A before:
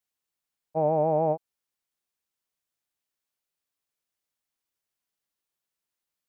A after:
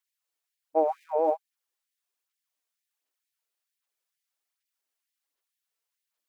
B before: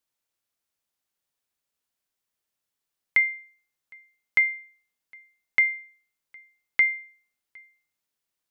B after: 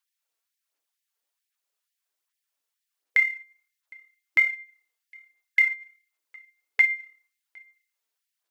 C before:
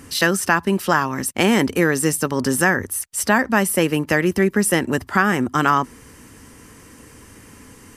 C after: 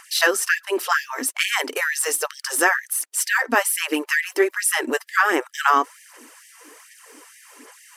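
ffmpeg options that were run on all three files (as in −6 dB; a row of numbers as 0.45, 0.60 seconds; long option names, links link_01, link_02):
-af "aphaser=in_gain=1:out_gain=1:delay=4.5:decay=0.43:speed=1.3:type=sinusoidal,lowshelf=frequency=91:gain=-6,afftfilt=real='re*gte(b*sr/1024,240*pow(1700/240,0.5+0.5*sin(2*PI*2.2*pts/sr)))':imag='im*gte(b*sr/1024,240*pow(1700/240,0.5+0.5*sin(2*PI*2.2*pts/sr)))':win_size=1024:overlap=0.75"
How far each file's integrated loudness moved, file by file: −2.0, +0.5, −2.0 LU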